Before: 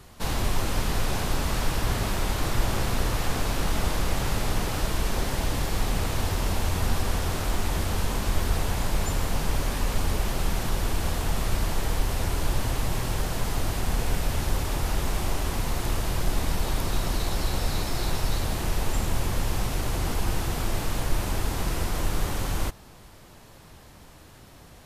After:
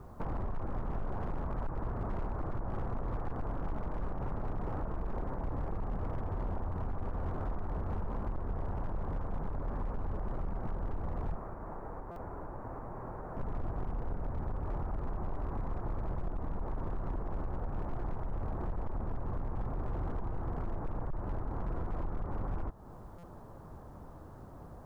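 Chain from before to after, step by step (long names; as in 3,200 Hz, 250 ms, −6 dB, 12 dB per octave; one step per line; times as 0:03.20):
inverse Chebyshev low-pass filter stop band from 3,200 Hz, stop band 50 dB
bit-depth reduction 12 bits, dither none
downward compressor 3 to 1, threshold −34 dBFS, peak gain reduction 13.5 dB
0:11.36–0:13.37: low-shelf EQ 180 Hz −12 dB
hard clipping −31 dBFS, distortion −14 dB
buffer that repeats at 0:12.11/0:23.18, samples 256, times 8
level +1 dB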